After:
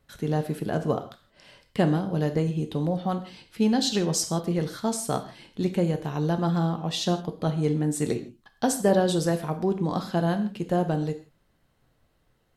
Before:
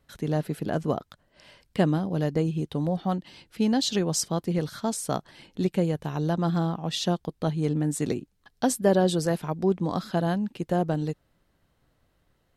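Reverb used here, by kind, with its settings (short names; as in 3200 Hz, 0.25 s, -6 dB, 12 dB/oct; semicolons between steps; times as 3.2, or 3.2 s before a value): non-linear reverb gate 0.19 s falling, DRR 6.5 dB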